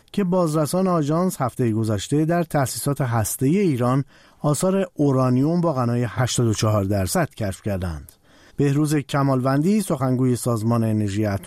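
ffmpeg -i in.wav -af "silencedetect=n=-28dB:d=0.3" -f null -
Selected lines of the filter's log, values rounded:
silence_start: 4.02
silence_end: 4.44 | silence_duration: 0.42
silence_start: 8.09
silence_end: 8.60 | silence_duration: 0.51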